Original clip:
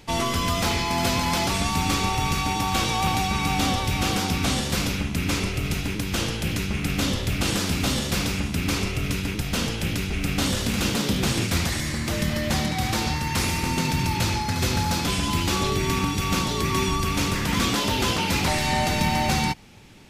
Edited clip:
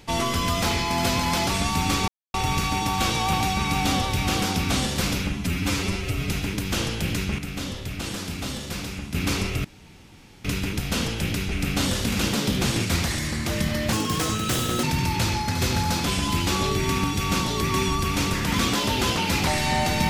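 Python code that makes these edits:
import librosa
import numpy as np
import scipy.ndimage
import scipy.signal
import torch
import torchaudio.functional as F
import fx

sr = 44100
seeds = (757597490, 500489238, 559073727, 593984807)

y = fx.edit(x, sr, fx.insert_silence(at_s=2.08, length_s=0.26),
    fx.stretch_span(start_s=5.06, length_s=0.65, factor=1.5),
    fx.clip_gain(start_s=6.8, length_s=1.76, db=-7.0),
    fx.insert_room_tone(at_s=9.06, length_s=0.8),
    fx.speed_span(start_s=12.54, length_s=1.3, speed=1.43), tone=tone)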